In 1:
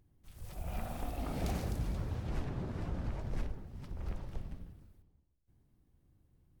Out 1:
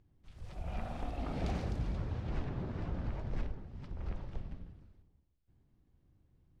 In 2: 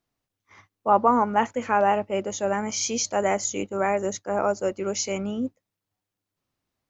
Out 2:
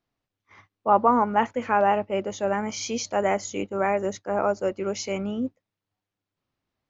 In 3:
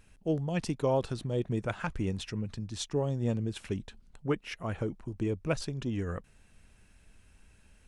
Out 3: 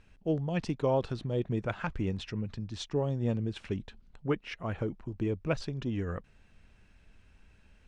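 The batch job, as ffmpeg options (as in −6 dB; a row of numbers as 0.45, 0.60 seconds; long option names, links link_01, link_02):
-af "lowpass=4600"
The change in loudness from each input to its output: 0.0, −0.5, 0.0 LU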